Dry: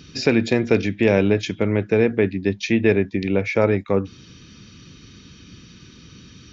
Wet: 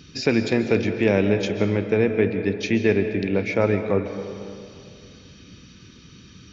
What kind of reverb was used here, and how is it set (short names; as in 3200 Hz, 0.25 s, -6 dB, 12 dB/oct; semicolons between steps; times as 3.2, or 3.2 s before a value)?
digital reverb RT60 2.4 s, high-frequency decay 0.55×, pre-delay 0.1 s, DRR 7.5 dB; gain -2.5 dB